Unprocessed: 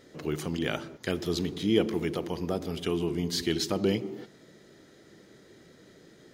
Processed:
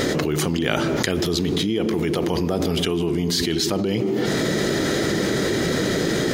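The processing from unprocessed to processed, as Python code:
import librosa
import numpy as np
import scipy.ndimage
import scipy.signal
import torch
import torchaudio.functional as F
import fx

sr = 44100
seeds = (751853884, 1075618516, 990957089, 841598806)

y = fx.env_flatten(x, sr, amount_pct=100)
y = F.gain(torch.from_numpy(y), -1.5).numpy()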